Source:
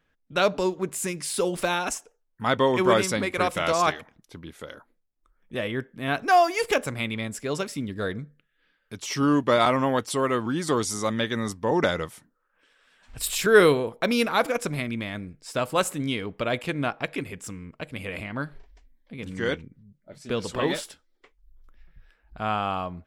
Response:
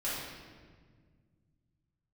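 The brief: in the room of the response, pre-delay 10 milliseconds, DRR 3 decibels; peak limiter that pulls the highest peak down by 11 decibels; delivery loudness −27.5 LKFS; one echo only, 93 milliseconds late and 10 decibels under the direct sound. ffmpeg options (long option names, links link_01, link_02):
-filter_complex "[0:a]alimiter=limit=-15dB:level=0:latency=1,aecho=1:1:93:0.316,asplit=2[link_01][link_02];[1:a]atrim=start_sample=2205,adelay=10[link_03];[link_02][link_03]afir=irnorm=-1:irlink=0,volume=-9dB[link_04];[link_01][link_04]amix=inputs=2:normalize=0,volume=-1.5dB"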